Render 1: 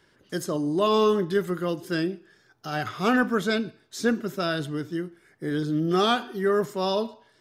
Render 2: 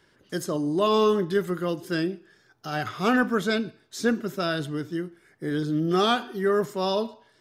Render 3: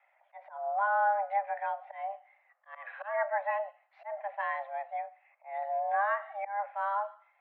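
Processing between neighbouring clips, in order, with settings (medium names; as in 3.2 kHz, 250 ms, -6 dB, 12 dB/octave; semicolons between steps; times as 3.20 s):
no audible change
low-pass that closes with the level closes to 1.3 kHz, closed at -19 dBFS; slow attack 200 ms; mistuned SSB +400 Hz 180–2200 Hz; trim -6 dB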